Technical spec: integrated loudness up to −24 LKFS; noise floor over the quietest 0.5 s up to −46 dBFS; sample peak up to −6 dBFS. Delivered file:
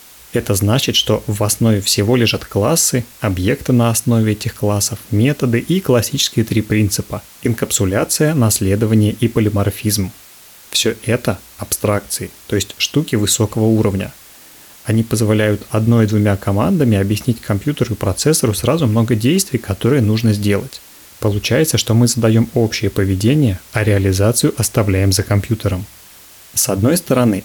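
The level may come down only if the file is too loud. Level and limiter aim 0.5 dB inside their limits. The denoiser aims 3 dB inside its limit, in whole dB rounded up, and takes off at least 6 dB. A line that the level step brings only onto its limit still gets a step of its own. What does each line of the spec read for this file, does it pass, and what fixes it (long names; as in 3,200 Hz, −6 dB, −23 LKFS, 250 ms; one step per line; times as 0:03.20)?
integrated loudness −15.5 LKFS: out of spec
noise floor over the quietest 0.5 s −41 dBFS: out of spec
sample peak −3.0 dBFS: out of spec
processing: level −9 dB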